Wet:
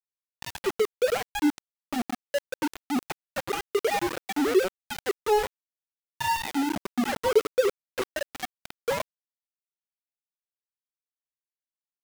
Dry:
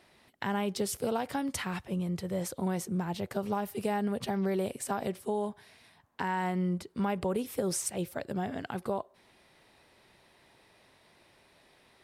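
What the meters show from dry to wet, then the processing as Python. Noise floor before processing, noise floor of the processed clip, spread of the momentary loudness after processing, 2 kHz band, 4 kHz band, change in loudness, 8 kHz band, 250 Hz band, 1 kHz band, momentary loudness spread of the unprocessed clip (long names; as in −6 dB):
−64 dBFS, below −85 dBFS, 11 LU, +7.5 dB, +8.0 dB, +5.0 dB, −0.5 dB, +2.0 dB, +4.5 dB, 5 LU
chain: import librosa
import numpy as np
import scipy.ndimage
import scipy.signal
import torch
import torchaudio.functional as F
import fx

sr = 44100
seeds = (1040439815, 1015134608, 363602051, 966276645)

y = fx.sine_speech(x, sr)
y = fx.dereverb_blind(y, sr, rt60_s=0.78)
y = fx.peak_eq(y, sr, hz=310.0, db=3.0, octaves=1.2)
y = y + 10.0 ** (-12.5 / 20.0) * np.pad(y, (int(92 * sr / 1000.0), 0))[:len(y)]
y = np.where(np.abs(y) >= 10.0 ** (-29.0 / 20.0), y, 0.0)
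y = F.gain(torch.from_numpy(y), 4.5).numpy()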